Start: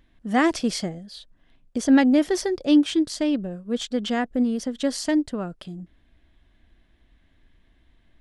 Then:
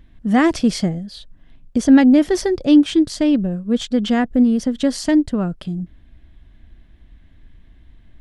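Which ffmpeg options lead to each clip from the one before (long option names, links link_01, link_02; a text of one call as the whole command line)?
ffmpeg -i in.wav -filter_complex "[0:a]bass=frequency=250:gain=9,treble=frequency=4000:gain=-2,asplit=2[link_01][link_02];[link_02]alimiter=limit=-13.5dB:level=0:latency=1:release=274,volume=-3dB[link_03];[link_01][link_03]amix=inputs=2:normalize=0" out.wav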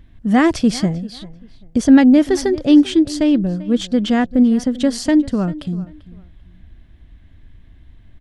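ffmpeg -i in.wav -filter_complex "[0:a]equalizer=frequency=93:width=1.5:gain=5,asplit=2[link_01][link_02];[link_02]adelay=392,lowpass=frequency=3700:poles=1,volume=-18.5dB,asplit=2[link_03][link_04];[link_04]adelay=392,lowpass=frequency=3700:poles=1,volume=0.25[link_05];[link_01][link_03][link_05]amix=inputs=3:normalize=0,volume=1dB" out.wav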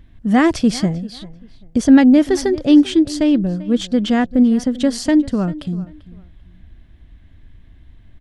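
ffmpeg -i in.wav -af anull out.wav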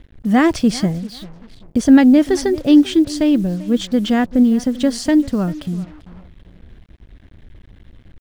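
ffmpeg -i in.wav -af "acrusher=bits=6:mix=0:aa=0.5" out.wav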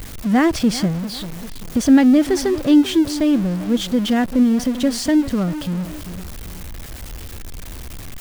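ffmpeg -i in.wav -af "aeval=exprs='val(0)+0.5*0.075*sgn(val(0))':channel_layout=same,volume=-3dB" out.wav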